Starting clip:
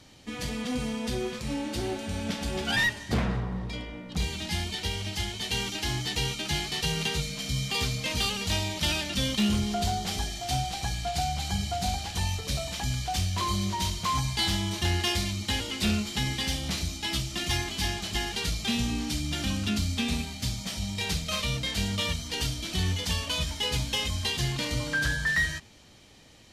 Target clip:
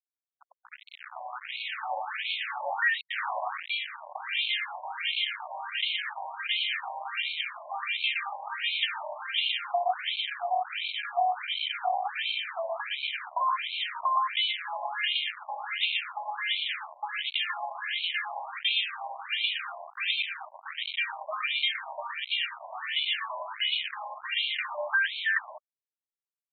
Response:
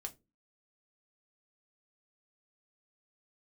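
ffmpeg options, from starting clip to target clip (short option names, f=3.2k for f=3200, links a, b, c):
-filter_complex "[0:a]highpass=f=520:w=0.5412,highpass=f=520:w=1.3066,aeval=exprs='0.168*(cos(1*acos(clip(val(0)/0.168,-1,1)))-cos(1*PI/2))+0.0075*(cos(2*acos(clip(val(0)/0.168,-1,1)))-cos(2*PI/2))+0.0335*(cos(3*acos(clip(val(0)/0.168,-1,1)))-cos(3*PI/2))':c=same,acompressor=threshold=-45dB:ratio=3,asoftclip=type=tanh:threshold=-31dB,dynaudnorm=f=420:g=7:m=9dB,aecho=1:1:118:0.668,asplit=2[a][b];[1:a]atrim=start_sample=2205[c];[b][c]afir=irnorm=-1:irlink=0,volume=-4.5dB[d];[a][d]amix=inputs=2:normalize=0,aresample=8000,aresample=44100,acrusher=bits=5:mix=0:aa=0.000001,afftfilt=real='re*between(b*sr/1024,760*pow(3100/760,0.5+0.5*sin(2*PI*1.4*pts/sr))/1.41,760*pow(3100/760,0.5+0.5*sin(2*PI*1.4*pts/sr))*1.41)':imag='im*between(b*sr/1024,760*pow(3100/760,0.5+0.5*sin(2*PI*1.4*pts/sr))/1.41,760*pow(3100/760,0.5+0.5*sin(2*PI*1.4*pts/sr))*1.41)':win_size=1024:overlap=0.75,volume=8.5dB"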